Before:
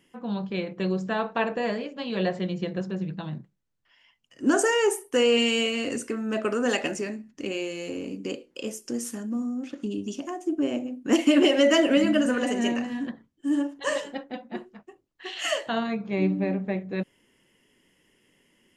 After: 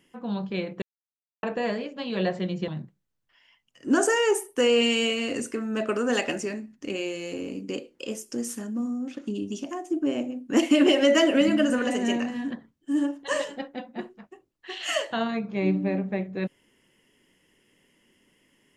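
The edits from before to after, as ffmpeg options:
-filter_complex "[0:a]asplit=4[s0][s1][s2][s3];[s0]atrim=end=0.82,asetpts=PTS-STARTPTS,afade=t=out:st=0.816:d=0.004:c=hsin[s4];[s1]atrim=start=0.82:end=1.43,asetpts=PTS-STARTPTS,volume=0[s5];[s2]atrim=start=1.43:end=2.682,asetpts=PTS-STARTPTS,afade=t=in:d=0.004:c=hsin[s6];[s3]atrim=start=3.238[s7];[s4][s5][s6]concat=n=3:v=0:a=1[s8];[s8][s7]acrossfade=d=0.004:c1=hsin:c2=hsin"

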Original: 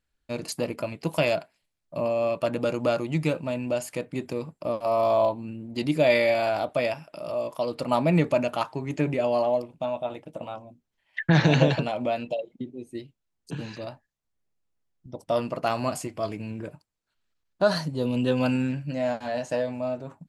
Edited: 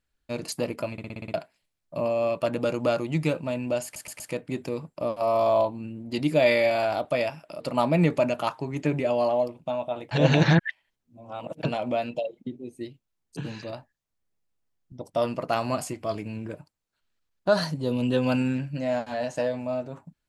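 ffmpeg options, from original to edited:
-filter_complex "[0:a]asplit=14[s0][s1][s2][s3][s4][s5][s6][s7][s8][s9][s10][s11][s12][s13];[s0]atrim=end=0.982[s14];[s1]atrim=start=0.918:end=0.982[s15];[s2]atrim=start=0.918:end=0.982[s16];[s3]atrim=start=0.918:end=0.982[s17];[s4]atrim=start=0.918:end=0.982[s18];[s5]atrim=start=0.918:end=0.982[s19];[s6]atrim=start=0.918:end=0.982[s20];[s7]atrim=start=1.338:end=3.962[s21];[s8]atrim=start=3.838:end=3.962[s22];[s9]atrim=start=3.838:end=3.962[s23];[s10]atrim=start=3.838:end=7.242[s24];[s11]atrim=start=7.738:end=10.252[s25];[s12]atrim=start=10.248:end=11.772,asetpts=PTS-STARTPTS,areverse[s26];[s13]atrim=start=11.768[s27];[s14][s15]acrossfade=d=0.004:c1=hsin:c2=hsin[s28];[s28][s16]acrossfade=d=0.004:c1=hsin:c2=hsin[s29];[s29][s17]acrossfade=d=0.004:c1=hsin:c2=hsin[s30];[s30][s18]acrossfade=d=0.004:c1=hsin:c2=hsin[s31];[s31][s19]acrossfade=d=0.004:c1=hsin:c2=hsin[s32];[s32][s20]acrossfade=d=0.004:c1=hsin:c2=hsin[s33];[s33][s21]acrossfade=d=0.004:c1=hsin:c2=hsin[s34];[s34][s22]acrossfade=d=0.004:c1=hsin:c2=hsin[s35];[s35][s23]acrossfade=d=0.004:c1=hsin:c2=hsin[s36];[s36][s24]acrossfade=d=0.004:c1=hsin:c2=hsin[s37];[s37][s25]acrossfade=d=0.004:c1=hsin:c2=hsin[s38];[s38][s26]acrossfade=d=0.004:c1=hsin:c2=hsin[s39];[s39][s27]acrossfade=d=0.004:c1=hsin:c2=hsin"

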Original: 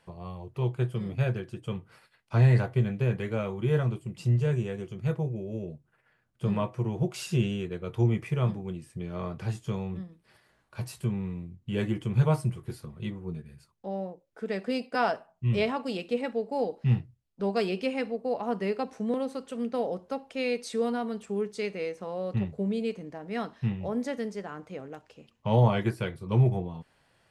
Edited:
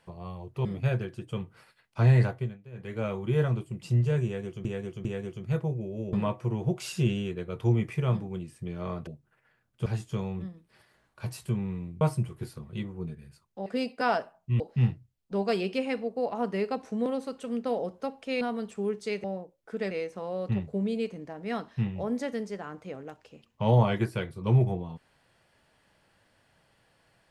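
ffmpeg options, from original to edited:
-filter_complex "[0:a]asplit=15[s0][s1][s2][s3][s4][s5][s6][s7][s8][s9][s10][s11][s12][s13][s14];[s0]atrim=end=0.652[s15];[s1]atrim=start=0.998:end=2.93,asetpts=PTS-STARTPTS,afade=t=out:st=1.582:d=0.35:silence=0.0944061[s16];[s2]atrim=start=2.93:end=3.07,asetpts=PTS-STARTPTS,volume=0.0944[s17];[s3]atrim=start=3.07:end=5.002,asetpts=PTS-STARTPTS,afade=t=in:d=0.35:silence=0.0944061[s18];[s4]atrim=start=4.598:end=5.002[s19];[s5]atrim=start=4.598:end=5.682[s20];[s6]atrim=start=6.468:end=9.412[s21];[s7]atrim=start=5.678:end=6.472[s22];[s8]atrim=start=9.408:end=11.562[s23];[s9]atrim=start=12.278:end=13.932[s24];[s10]atrim=start=14.598:end=15.542[s25];[s11]atrim=start=16.678:end=20.492[s26];[s12]atrim=start=20.928:end=21.762[s27];[s13]atrim=start=13.928:end=14.602[s28];[s14]atrim=start=21.758[s29];[s16][s17][s18]concat=n=3:v=0:a=1[s30];[s15][s30]acrossfade=d=0.004:c1=hsin:c2=hsin[s31];[s31][s19]acrossfade=d=0.004:c1=hsin:c2=hsin[s32];[s32][s20]acrossfade=d=0.004:c1=hsin:c2=hsin[s33];[s33][s21]acrossfade=d=0.004:c1=hsin:c2=hsin[s34];[s34][s22]acrossfade=d=0.004:c1=hsin:c2=hsin[s35];[s35][s23]acrossfade=d=0.004:c1=hsin:c2=hsin[s36];[s36][s24]acrossfade=d=0.004:c1=hsin:c2=hsin[s37];[s37][s25]acrossfade=d=0.004:c1=hsin:c2=hsin[s38];[s38][s26]acrossfade=d=0.004:c1=hsin:c2=hsin[s39];[s39][s27]acrossfade=d=0.004:c1=hsin:c2=hsin[s40];[s40][s28]acrossfade=d=0.004:c1=hsin:c2=hsin[s41];[s41][s29]acrossfade=d=0.004:c1=hsin:c2=hsin"

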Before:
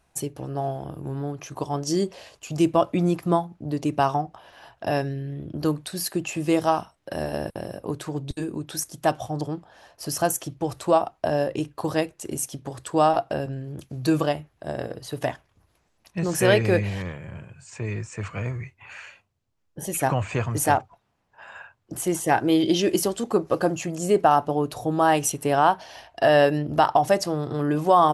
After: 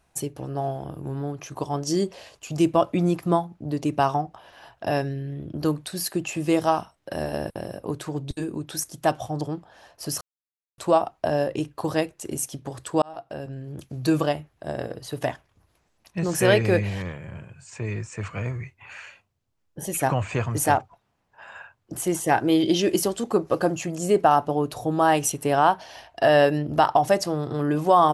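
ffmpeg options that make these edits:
-filter_complex "[0:a]asplit=4[s0][s1][s2][s3];[s0]atrim=end=10.21,asetpts=PTS-STARTPTS,afade=t=out:st=10.206:d=0.004:c=hsin[s4];[s1]atrim=start=10.21:end=10.78,asetpts=PTS-STARTPTS,volume=0[s5];[s2]atrim=start=10.78:end=13.02,asetpts=PTS-STARTPTS,afade=t=in:d=0.004:c=hsin,afade=t=out:st=2.236:d=0.004:c=hsin[s6];[s3]atrim=start=13.02,asetpts=PTS-STARTPTS,afade=t=in:d=0.79[s7];[s4][s5][s6][s7]concat=n=4:v=0:a=1"

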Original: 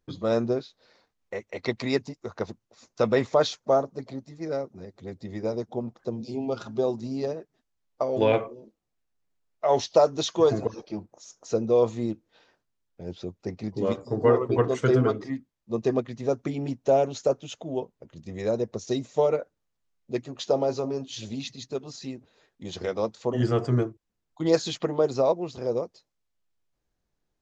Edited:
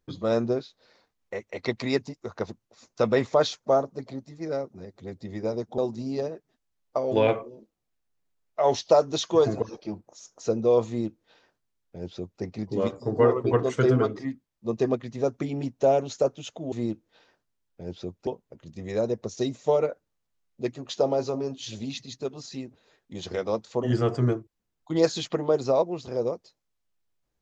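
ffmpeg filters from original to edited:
-filter_complex "[0:a]asplit=4[s0][s1][s2][s3];[s0]atrim=end=5.782[s4];[s1]atrim=start=6.828:end=17.772[s5];[s2]atrim=start=11.918:end=13.472[s6];[s3]atrim=start=17.768[s7];[s4][s5]acrossfade=d=0.004:c1=hsin:c2=hsin[s8];[s8][s6]acrossfade=d=0.004:c1=hsin:c2=hsin[s9];[s9][s7]acrossfade=d=0.004:c1=hsin:c2=hsin"

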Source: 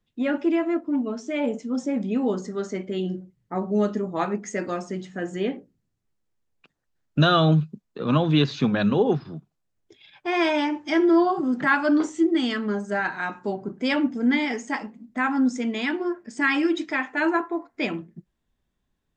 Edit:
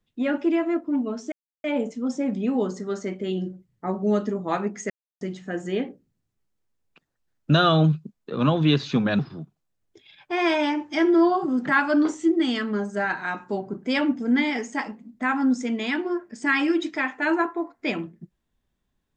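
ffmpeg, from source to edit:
-filter_complex "[0:a]asplit=5[s0][s1][s2][s3][s4];[s0]atrim=end=1.32,asetpts=PTS-STARTPTS,afade=t=out:st=1.316:d=0.004:c=hsin,apad=pad_dur=0.32[s5];[s1]atrim=start=1.32:end=4.58,asetpts=PTS-STARTPTS,afade=t=in:d=0.004:c=hsin,afade=t=out:st=3.256:d=0.004:c=hsin[s6];[s2]atrim=start=4.58:end=4.89,asetpts=PTS-STARTPTS,volume=0[s7];[s3]atrim=start=4.89:end=8.872,asetpts=PTS-STARTPTS,afade=t=in:d=0.004:c=hsin[s8];[s4]atrim=start=9.138[s9];[s5][s6][s7][s8]concat=n=4:v=0:a=1[s10];[s10][s9]acrossfade=d=0.004:c1=hsin:c2=hsin"

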